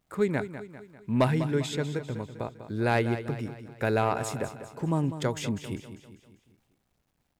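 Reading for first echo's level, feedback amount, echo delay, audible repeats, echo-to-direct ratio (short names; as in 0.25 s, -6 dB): -11.5 dB, 49%, 0.198 s, 4, -10.5 dB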